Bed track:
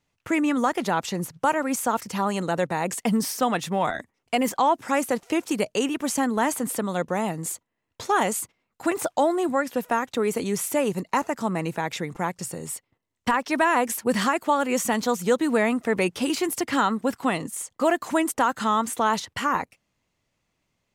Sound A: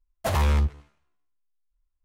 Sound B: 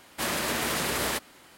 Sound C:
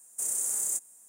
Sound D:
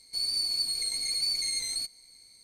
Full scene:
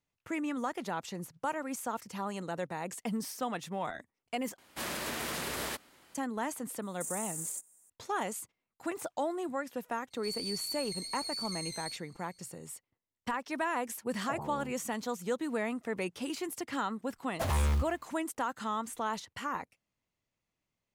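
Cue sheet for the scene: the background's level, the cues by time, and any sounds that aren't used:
bed track −12 dB
0:04.58: overwrite with B −8 dB
0:06.82: mix in C −8.5 dB + brickwall limiter −19.5 dBFS
0:10.10: mix in D −10 dB, fades 0.02 s
0:14.04: mix in A −10.5 dB + elliptic band-pass filter 130–860 Hz
0:17.15: mix in A −7 dB + log-companded quantiser 6 bits

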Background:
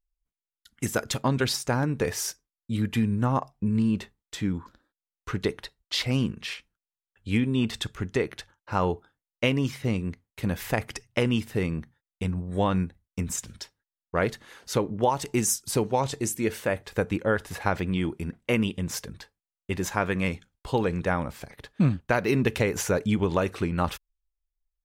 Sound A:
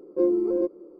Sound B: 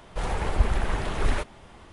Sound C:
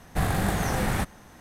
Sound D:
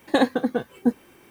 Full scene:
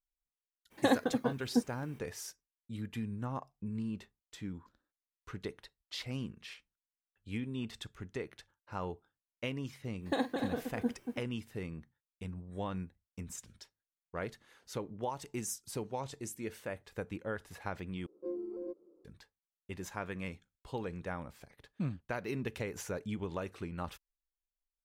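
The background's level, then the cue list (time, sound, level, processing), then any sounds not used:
background −14 dB
0:00.70: mix in D −8.5 dB, fades 0.02 s
0:09.98: mix in D −13.5 dB, fades 0.10 s + multi-tap delay 47/235/324 ms −11.5/−6.5/−11 dB
0:18.06: overwrite with A −17.5 dB
not used: B, C

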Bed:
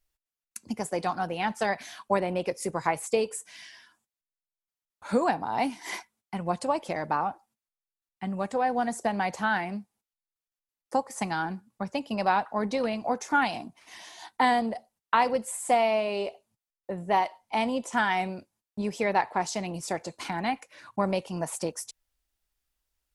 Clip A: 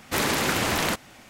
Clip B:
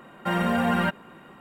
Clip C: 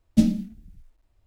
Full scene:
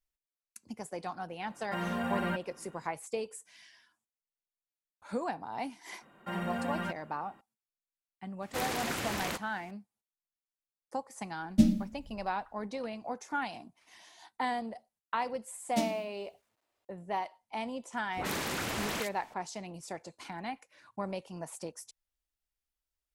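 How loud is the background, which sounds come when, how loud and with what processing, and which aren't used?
bed −10 dB
0:01.46: mix in B −10 dB
0:06.01: mix in B −12 dB
0:08.42: mix in A −11 dB
0:11.41: mix in C −4.5 dB
0:15.59: mix in C −1.5 dB + high-pass filter 460 Hz
0:18.05: mix in A −10.5 dB + all-pass dispersion highs, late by 82 ms, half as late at 1,400 Hz

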